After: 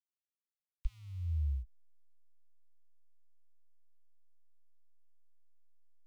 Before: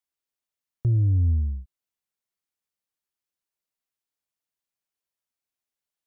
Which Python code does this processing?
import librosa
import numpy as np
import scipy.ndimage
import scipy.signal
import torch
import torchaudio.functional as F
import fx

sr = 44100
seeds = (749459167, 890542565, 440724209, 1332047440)

y = fx.backlash(x, sr, play_db=-33.0)
y = scipy.signal.sosfilt(scipy.signal.cheby2(4, 80, [200.0, 490.0], 'bandstop', fs=sr, output='sos'), y)
y = fx.fixed_phaser(y, sr, hz=440.0, stages=6)
y = F.gain(torch.from_numpy(y), 10.5).numpy()